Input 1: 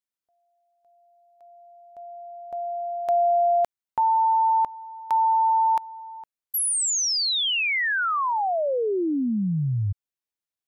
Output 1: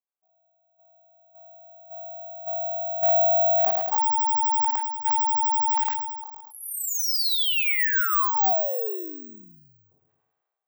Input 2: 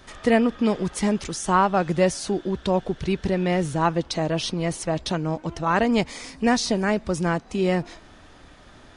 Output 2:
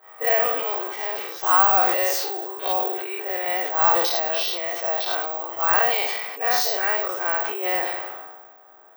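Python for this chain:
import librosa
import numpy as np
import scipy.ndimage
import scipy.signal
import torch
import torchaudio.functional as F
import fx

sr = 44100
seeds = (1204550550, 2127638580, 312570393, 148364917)

y = fx.spec_dilate(x, sr, span_ms=120)
y = scipy.signal.sosfilt(scipy.signal.butter(4, 550.0, 'highpass', fs=sr, output='sos'), y)
y = fx.env_lowpass(y, sr, base_hz=860.0, full_db=-15.5)
y = scipy.signal.sosfilt(scipy.signal.butter(2, 8400.0, 'lowpass', fs=sr, output='sos'), y)
y = y + 0.39 * np.pad(y, (int(2.6 * sr / 1000.0), 0))[:len(y)]
y = fx.rider(y, sr, range_db=4, speed_s=2.0)
y = fx.echo_feedback(y, sr, ms=107, feedback_pct=42, wet_db=-15.5)
y = (np.kron(scipy.signal.resample_poly(y, 1, 2), np.eye(2)[0]) * 2)[:len(y)]
y = fx.sustainer(y, sr, db_per_s=35.0)
y = y * 10.0 ** (-5.0 / 20.0)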